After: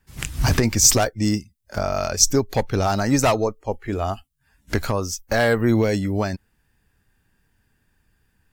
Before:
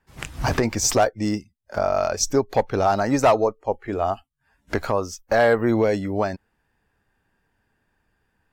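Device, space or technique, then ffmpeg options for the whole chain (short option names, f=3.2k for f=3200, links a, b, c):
smiley-face EQ: -af "lowshelf=f=190:g=4,equalizer=f=700:t=o:w=2.3:g=-8,highshelf=f=6.4k:g=8,volume=4dB"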